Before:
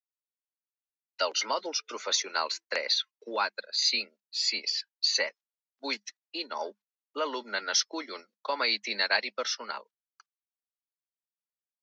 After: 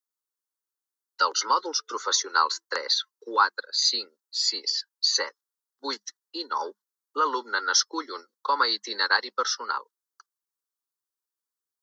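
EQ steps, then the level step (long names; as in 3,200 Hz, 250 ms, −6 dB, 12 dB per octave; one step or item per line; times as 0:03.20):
high-pass filter 280 Hz 6 dB per octave
dynamic equaliser 1,200 Hz, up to +6 dB, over −44 dBFS, Q 2.1
phaser with its sweep stopped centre 650 Hz, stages 6
+6.5 dB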